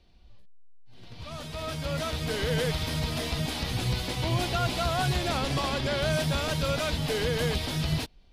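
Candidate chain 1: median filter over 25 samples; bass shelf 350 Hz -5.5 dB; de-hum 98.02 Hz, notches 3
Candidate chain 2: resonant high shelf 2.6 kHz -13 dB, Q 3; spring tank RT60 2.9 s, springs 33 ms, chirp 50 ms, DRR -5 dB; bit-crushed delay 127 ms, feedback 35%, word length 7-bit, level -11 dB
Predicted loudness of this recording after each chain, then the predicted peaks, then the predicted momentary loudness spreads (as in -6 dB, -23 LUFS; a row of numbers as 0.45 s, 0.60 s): -34.0 LUFS, -21.0 LUFS; -21.0 dBFS, -6.5 dBFS; 6 LU, 7 LU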